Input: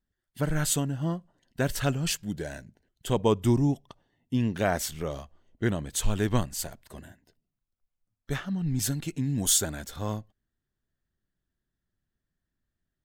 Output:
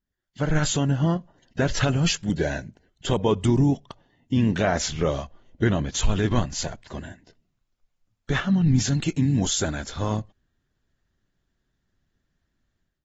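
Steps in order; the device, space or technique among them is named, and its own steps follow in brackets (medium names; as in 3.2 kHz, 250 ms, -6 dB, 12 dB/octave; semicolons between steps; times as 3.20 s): low-bitrate web radio (level rider gain up to 12.5 dB; peak limiter -10 dBFS, peak gain reduction 8 dB; trim -2.5 dB; AAC 24 kbps 48 kHz)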